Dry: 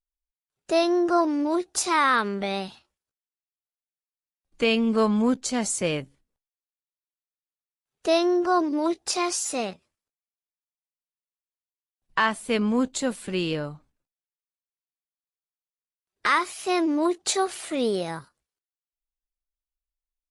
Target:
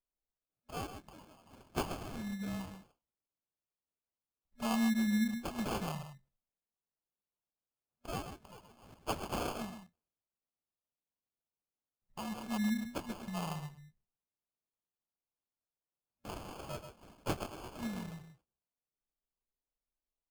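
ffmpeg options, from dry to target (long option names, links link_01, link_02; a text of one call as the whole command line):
ffmpeg -i in.wav -af "aecho=1:1:132:0.398,afftfilt=real='re*(1-between(b*sr/4096,240,2500))':imag='im*(1-between(b*sr/4096,240,2500))':win_size=4096:overlap=0.75,acrusher=samples=23:mix=1:aa=0.000001,volume=-8dB" out.wav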